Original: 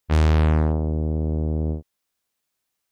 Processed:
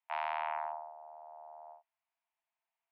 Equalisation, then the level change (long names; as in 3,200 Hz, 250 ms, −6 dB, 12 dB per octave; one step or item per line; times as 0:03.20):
Chebyshev high-pass with heavy ripple 650 Hz, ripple 9 dB
low-pass filter 1,000 Hz 6 dB per octave
high-frequency loss of the air 350 metres
+6.0 dB